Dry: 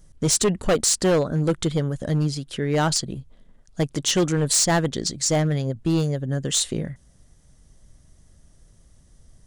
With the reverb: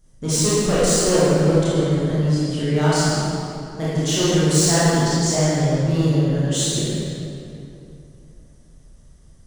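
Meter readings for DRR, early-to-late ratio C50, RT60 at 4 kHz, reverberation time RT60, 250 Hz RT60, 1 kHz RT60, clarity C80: −10.5 dB, −6.0 dB, 1.8 s, 2.8 s, 3.0 s, 2.7 s, −3.0 dB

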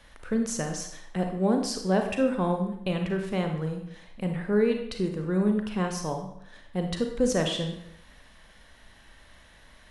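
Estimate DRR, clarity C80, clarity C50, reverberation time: 4.0 dB, 9.0 dB, 5.5 dB, 0.75 s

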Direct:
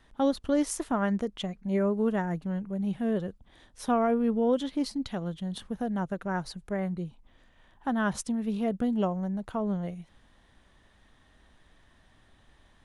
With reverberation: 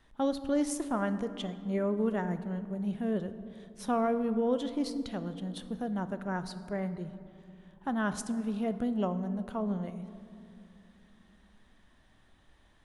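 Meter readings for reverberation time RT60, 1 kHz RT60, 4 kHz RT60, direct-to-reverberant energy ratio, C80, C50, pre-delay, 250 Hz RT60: 2.7 s, 2.4 s, 1.2 s, 11.0 dB, 13.5 dB, 12.5 dB, 3 ms, 4.0 s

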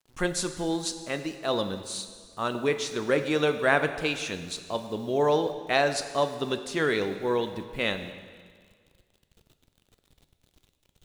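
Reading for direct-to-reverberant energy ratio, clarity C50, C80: 8.0 dB, 10.0 dB, 11.0 dB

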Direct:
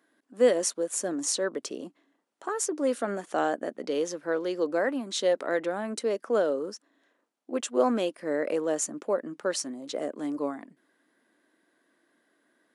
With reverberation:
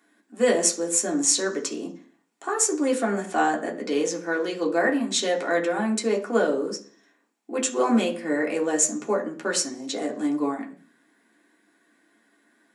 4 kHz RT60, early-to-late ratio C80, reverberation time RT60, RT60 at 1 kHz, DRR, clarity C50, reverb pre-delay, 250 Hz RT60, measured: 0.55 s, 17.5 dB, 0.45 s, 0.40 s, −2.0 dB, 13.0 dB, 3 ms, 0.55 s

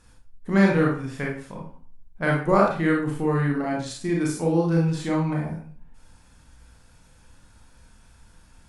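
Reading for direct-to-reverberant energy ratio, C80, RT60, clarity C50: −2.5 dB, 8.5 dB, 0.45 s, 3.5 dB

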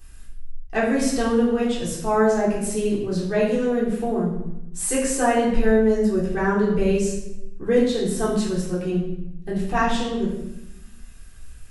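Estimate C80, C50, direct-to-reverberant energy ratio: 6.0 dB, 3.5 dB, −7.0 dB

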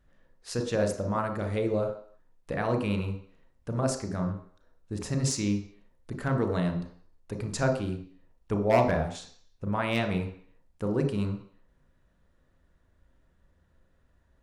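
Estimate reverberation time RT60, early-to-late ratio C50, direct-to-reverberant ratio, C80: 0.55 s, 8.0 dB, 3.5 dB, 11.5 dB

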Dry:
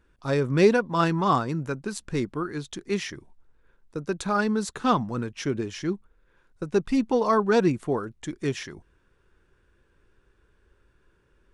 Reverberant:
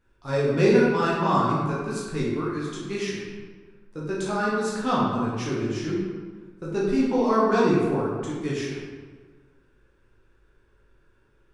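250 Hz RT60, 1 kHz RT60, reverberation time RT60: 1.6 s, 1.5 s, 1.5 s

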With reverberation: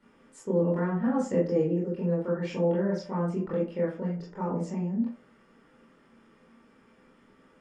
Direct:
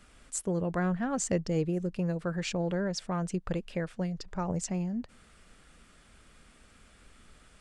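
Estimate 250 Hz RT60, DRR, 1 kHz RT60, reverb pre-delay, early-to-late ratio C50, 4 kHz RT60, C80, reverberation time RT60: 0.50 s, −7.5 dB, 0.50 s, 20 ms, 5.5 dB, 0.25 s, 10.5 dB, 0.50 s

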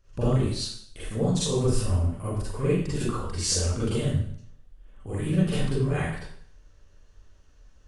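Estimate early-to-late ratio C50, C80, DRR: −1.5 dB, 3.5 dB, −10.0 dB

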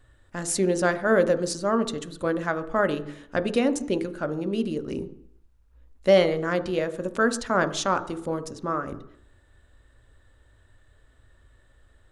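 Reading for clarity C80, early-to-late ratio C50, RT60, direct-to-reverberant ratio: 17.0 dB, 14.0 dB, 0.70 s, 10.0 dB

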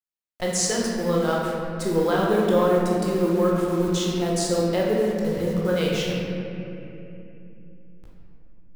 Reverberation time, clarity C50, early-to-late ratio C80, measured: 3.0 s, −1.0 dB, 0.5 dB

